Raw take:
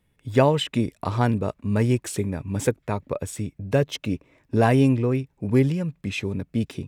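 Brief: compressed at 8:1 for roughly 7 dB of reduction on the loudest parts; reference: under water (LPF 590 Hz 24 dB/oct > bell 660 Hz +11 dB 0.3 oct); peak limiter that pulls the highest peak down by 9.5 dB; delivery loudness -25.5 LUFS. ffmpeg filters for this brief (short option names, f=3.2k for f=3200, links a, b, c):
-af "acompressor=threshold=-20dB:ratio=8,alimiter=limit=-20.5dB:level=0:latency=1,lowpass=f=590:w=0.5412,lowpass=f=590:w=1.3066,equalizer=f=660:t=o:w=0.3:g=11,volume=5.5dB"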